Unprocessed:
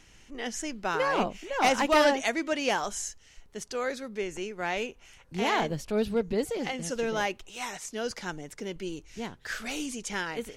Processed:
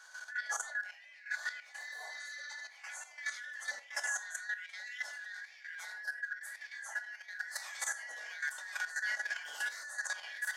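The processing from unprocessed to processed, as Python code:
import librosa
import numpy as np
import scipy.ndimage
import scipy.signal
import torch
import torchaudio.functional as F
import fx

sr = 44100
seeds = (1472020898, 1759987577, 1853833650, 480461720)

p1 = fx.band_shuffle(x, sr, order='4123')
p2 = fx.dynamic_eq(p1, sr, hz=740.0, q=2.2, threshold_db=-53.0, ratio=4.0, max_db=5)
p3 = p2 + fx.echo_single(p2, sr, ms=1083, db=-8.0, dry=0)
p4 = fx.spec_repair(p3, sr, seeds[0], start_s=1.78, length_s=0.78, low_hz=1200.0, high_hz=6400.0, source='after')
p5 = fx.over_compress(p4, sr, threshold_db=-40.0, ratio=-1.0)
p6 = scipy.signal.sosfilt(scipy.signal.butter(4, 580.0, 'highpass', fs=sr, output='sos'), p5)
p7 = fx.band_shelf(p6, sr, hz=3000.0, db=-9.0, octaves=1.2)
p8 = fx.room_shoebox(p7, sr, seeds[1], volume_m3=300.0, walls='furnished', distance_m=2.3)
p9 = fx.level_steps(p8, sr, step_db=11)
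y = p9 * 10.0 ** (-1.5 / 20.0)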